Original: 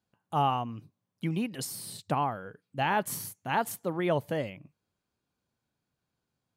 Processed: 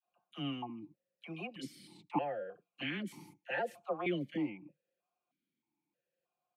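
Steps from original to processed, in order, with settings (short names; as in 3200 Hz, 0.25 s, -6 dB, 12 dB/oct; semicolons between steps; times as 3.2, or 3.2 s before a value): comb 5.7 ms, depth 55%; dispersion lows, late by 55 ms, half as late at 670 Hz; vowel sequencer 3.2 Hz; gain +6.5 dB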